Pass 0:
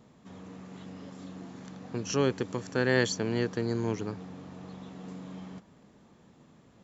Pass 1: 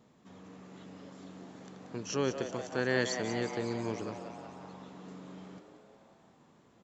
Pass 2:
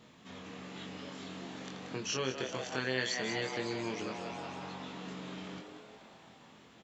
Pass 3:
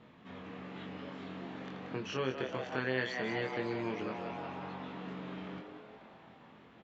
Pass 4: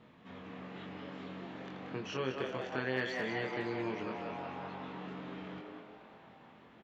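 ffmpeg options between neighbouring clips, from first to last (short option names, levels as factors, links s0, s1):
-filter_complex "[0:a]lowshelf=f=130:g=-6.5,asplit=2[s0][s1];[s1]asplit=8[s2][s3][s4][s5][s6][s7][s8][s9];[s2]adelay=182,afreqshift=120,volume=0.335[s10];[s3]adelay=364,afreqshift=240,volume=0.211[s11];[s4]adelay=546,afreqshift=360,volume=0.133[s12];[s5]adelay=728,afreqshift=480,volume=0.0841[s13];[s6]adelay=910,afreqshift=600,volume=0.0525[s14];[s7]adelay=1092,afreqshift=720,volume=0.0331[s15];[s8]adelay=1274,afreqshift=840,volume=0.0209[s16];[s9]adelay=1456,afreqshift=960,volume=0.0132[s17];[s10][s11][s12][s13][s14][s15][s16][s17]amix=inputs=8:normalize=0[s18];[s0][s18]amix=inputs=2:normalize=0,volume=0.631"
-filter_complex "[0:a]equalizer=f=3000:w=0.68:g=10.5,acompressor=threshold=0.00891:ratio=2,asplit=2[s0][s1];[s1]adelay=23,volume=0.631[s2];[s0][s2]amix=inputs=2:normalize=0,volume=1.26"
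-af "lowpass=2400,volume=1.12"
-filter_complex "[0:a]asplit=2[s0][s1];[s1]adelay=210,highpass=300,lowpass=3400,asoftclip=type=hard:threshold=0.0447,volume=0.501[s2];[s0][s2]amix=inputs=2:normalize=0,volume=0.841"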